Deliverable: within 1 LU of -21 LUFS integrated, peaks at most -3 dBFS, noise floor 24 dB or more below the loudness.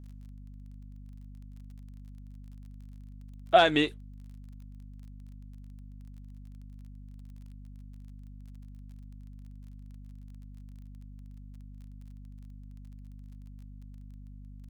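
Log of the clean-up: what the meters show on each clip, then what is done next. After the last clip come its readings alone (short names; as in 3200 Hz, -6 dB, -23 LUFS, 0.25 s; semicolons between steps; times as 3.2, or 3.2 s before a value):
ticks 28/s; hum 50 Hz; harmonics up to 250 Hz; hum level -44 dBFS; loudness -24.0 LUFS; peak -7.0 dBFS; loudness target -21.0 LUFS
-> de-click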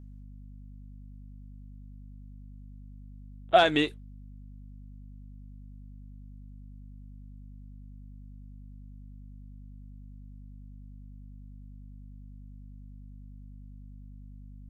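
ticks 0/s; hum 50 Hz; harmonics up to 250 Hz; hum level -44 dBFS
-> de-hum 50 Hz, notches 5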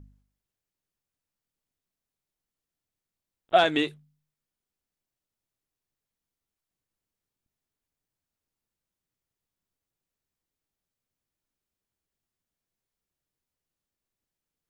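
hum none; loudness -24.0 LUFS; peak -7.0 dBFS; loudness target -21.0 LUFS
-> gain +3 dB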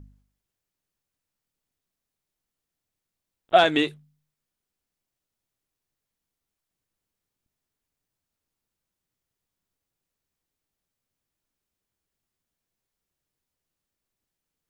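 loudness -21.0 LUFS; peak -4.0 dBFS; noise floor -86 dBFS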